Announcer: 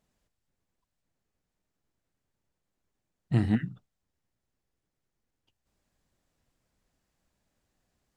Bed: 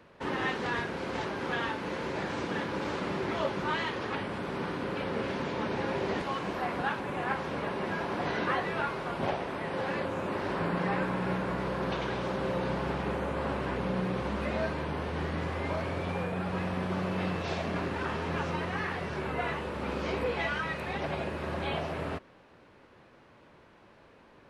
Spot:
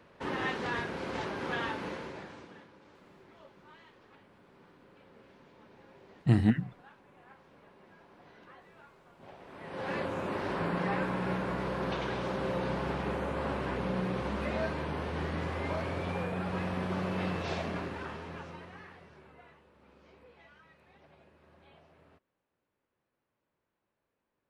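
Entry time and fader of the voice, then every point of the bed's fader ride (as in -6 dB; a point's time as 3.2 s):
2.95 s, +1.0 dB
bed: 1.84 s -2 dB
2.78 s -25 dB
9.15 s -25 dB
9.93 s -1.5 dB
17.58 s -1.5 dB
19.65 s -27 dB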